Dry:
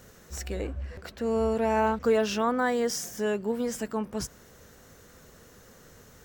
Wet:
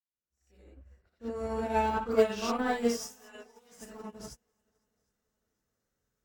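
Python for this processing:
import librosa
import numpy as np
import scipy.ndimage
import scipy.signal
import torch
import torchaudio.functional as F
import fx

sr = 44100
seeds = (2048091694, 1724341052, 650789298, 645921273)

p1 = fx.fade_in_head(x, sr, length_s=1.37)
p2 = fx.high_shelf(p1, sr, hz=3800.0, db=-10.5, at=(0.64, 1.3))
p3 = fx.highpass(p2, sr, hz=800.0, slope=12, at=(3.0, 3.72))
p4 = 10.0 ** (-20.0 / 20.0) * np.tanh(p3 / 10.0 ** (-20.0 / 20.0))
p5 = fx.dispersion(p4, sr, late='highs', ms=78.0, hz=2000.0, at=(1.9, 2.42))
p6 = p5 + fx.echo_heads(p5, sr, ms=253, heads='second and third', feedback_pct=48, wet_db=-18, dry=0)
p7 = fx.rev_gated(p6, sr, seeds[0], gate_ms=110, shape='rising', drr_db=-4.0)
y = fx.upward_expand(p7, sr, threshold_db=-42.0, expansion=2.5)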